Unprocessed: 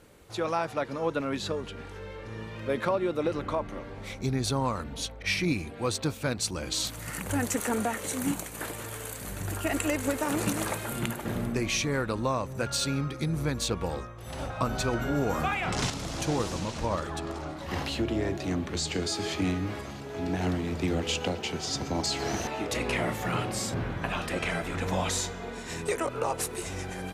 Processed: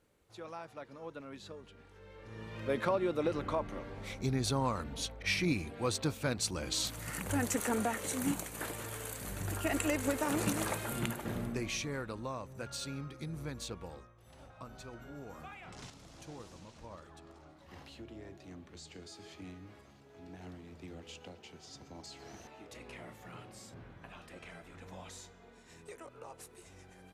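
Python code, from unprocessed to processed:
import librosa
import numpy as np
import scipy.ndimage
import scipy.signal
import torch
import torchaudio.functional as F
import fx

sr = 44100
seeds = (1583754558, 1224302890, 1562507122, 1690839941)

y = fx.gain(x, sr, db=fx.line((1.9, -16.5), (2.59, -4.0), (11.01, -4.0), (12.24, -12.0), (13.61, -12.0), (14.4, -20.0)))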